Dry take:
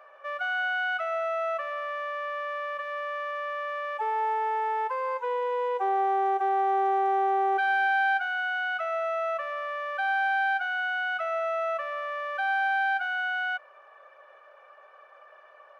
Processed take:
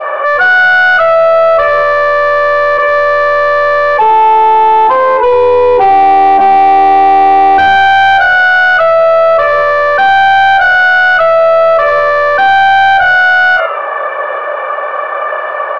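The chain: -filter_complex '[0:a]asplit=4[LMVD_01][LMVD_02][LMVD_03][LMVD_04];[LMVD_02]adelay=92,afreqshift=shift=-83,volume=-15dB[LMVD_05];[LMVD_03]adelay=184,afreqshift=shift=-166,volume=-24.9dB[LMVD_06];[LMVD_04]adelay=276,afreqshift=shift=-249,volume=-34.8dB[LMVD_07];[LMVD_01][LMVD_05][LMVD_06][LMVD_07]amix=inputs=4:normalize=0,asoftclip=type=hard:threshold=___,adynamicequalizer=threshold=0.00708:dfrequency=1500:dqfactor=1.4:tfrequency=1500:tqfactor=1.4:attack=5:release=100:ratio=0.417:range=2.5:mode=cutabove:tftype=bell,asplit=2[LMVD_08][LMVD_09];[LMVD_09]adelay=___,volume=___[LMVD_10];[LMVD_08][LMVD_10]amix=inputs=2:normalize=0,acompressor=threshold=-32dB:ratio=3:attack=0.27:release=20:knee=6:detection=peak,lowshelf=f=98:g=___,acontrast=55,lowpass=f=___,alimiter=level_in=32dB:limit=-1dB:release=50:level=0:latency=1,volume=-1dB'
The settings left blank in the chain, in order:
-27.5dB, 32, -11dB, -3.5, 2200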